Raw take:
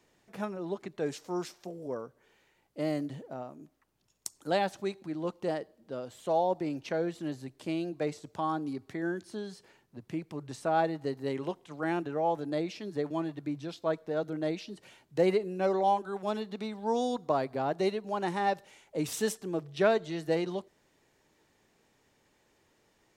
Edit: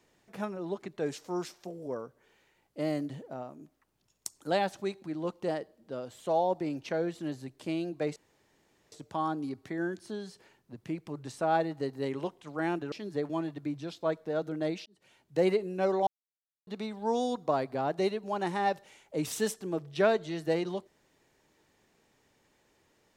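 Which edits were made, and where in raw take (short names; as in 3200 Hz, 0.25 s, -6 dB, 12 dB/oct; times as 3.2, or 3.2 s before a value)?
8.16 insert room tone 0.76 s
12.16–12.73 cut
14.67–15.26 fade in
15.88–16.48 mute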